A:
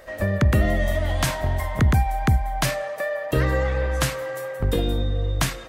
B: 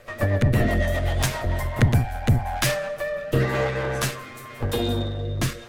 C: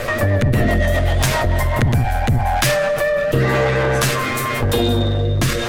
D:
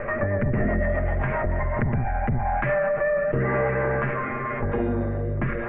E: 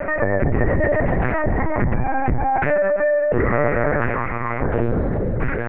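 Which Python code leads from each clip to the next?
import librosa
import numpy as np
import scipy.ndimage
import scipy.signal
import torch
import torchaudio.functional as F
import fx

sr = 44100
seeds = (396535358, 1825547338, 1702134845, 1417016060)

y1 = fx.lower_of_two(x, sr, delay_ms=8.5)
y1 = fx.rotary_switch(y1, sr, hz=8.0, then_hz=0.9, switch_at_s=1.1)
y1 = y1 * 10.0 ** (3.0 / 20.0)
y2 = fx.env_flatten(y1, sr, amount_pct=70)
y3 = scipy.signal.sosfilt(scipy.signal.butter(8, 2200.0, 'lowpass', fs=sr, output='sos'), y2)
y3 = y3 + 0.33 * np.pad(y3, (int(5.0 * sr / 1000.0), 0))[:len(y3)]
y3 = y3 * 10.0 ** (-7.0 / 20.0)
y4 = fx.lpc_vocoder(y3, sr, seeds[0], excitation='pitch_kept', order=8)
y4 = y4 * 10.0 ** (5.0 / 20.0)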